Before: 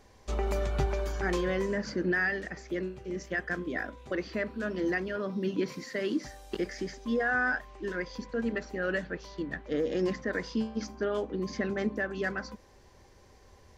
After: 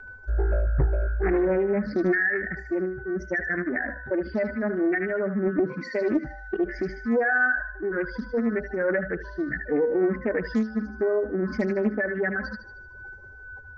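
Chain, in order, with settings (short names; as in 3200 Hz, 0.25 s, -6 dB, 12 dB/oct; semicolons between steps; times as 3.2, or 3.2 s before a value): spectral contrast raised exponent 2.2; treble ducked by the level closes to 1800 Hz, closed at -29 dBFS; whine 1500 Hz -48 dBFS; vibrato 1 Hz 9.5 cents; thinning echo 76 ms, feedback 53%, high-pass 1200 Hz, level -5 dB; Doppler distortion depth 0.59 ms; gain +7 dB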